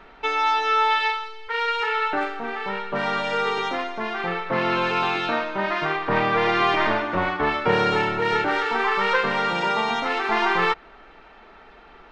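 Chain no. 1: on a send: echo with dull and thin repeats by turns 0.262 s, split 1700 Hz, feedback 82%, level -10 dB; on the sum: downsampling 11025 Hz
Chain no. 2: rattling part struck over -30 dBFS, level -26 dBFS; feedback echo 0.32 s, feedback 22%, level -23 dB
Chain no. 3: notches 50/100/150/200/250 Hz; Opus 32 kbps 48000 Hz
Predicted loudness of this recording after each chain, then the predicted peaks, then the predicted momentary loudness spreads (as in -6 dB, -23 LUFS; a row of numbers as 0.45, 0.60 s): -22.0, -22.5, -22.5 LUFS; -5.5, -6.0, -7.0 dBFS; 8, 8, 8 LU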